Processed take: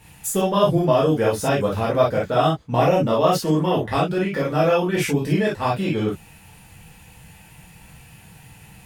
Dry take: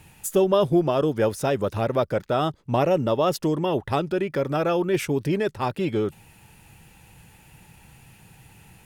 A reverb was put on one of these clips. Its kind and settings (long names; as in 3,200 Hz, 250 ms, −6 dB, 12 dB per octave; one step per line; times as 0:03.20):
reverb whose tail is shaped and stops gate 80 ms flat, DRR −6 dB
level −2 dB